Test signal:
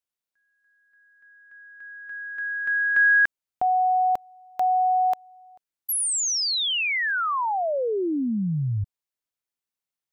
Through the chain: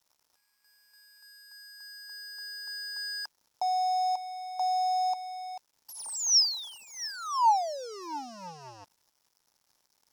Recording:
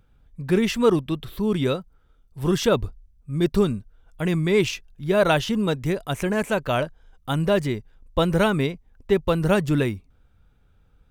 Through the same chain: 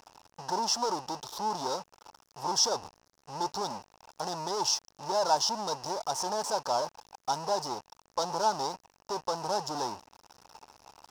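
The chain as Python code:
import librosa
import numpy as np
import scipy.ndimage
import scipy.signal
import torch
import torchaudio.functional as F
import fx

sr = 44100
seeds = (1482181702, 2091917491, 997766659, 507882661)

y = fx.power_curve(x, sr, exponent=0.35)
y = fx.double_bandpass(y, sr, hz=2200.0, octaves=2.6)
y = np.sign(y) * np.maximum(np.abs(y) - 10.0 ** (-50.5 / 20.0), 0.0)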